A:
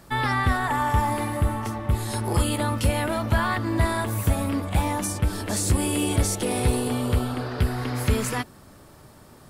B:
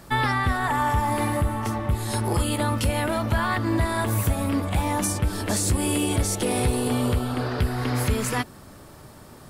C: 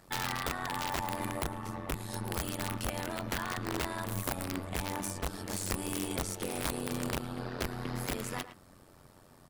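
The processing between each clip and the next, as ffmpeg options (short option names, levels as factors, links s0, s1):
-af "alimiter=limit=0.141:level=0:latency=1:release=277,volume=1.5"
-filter_complex "[0:a]aeval=exprs='(mod(5.96*val(0)+1,2)-1)/5.96':c=same,tremolo=f=90:d=0.857,asplit=2[s0][s1];[s1]adelay=110,highpass=300,lowpass=3400,asoftclip=type=hard:threshold=0.0668,volume=0.282[s2];[s0][s2]amix=inputs=2:normalize=0,volume=0.376"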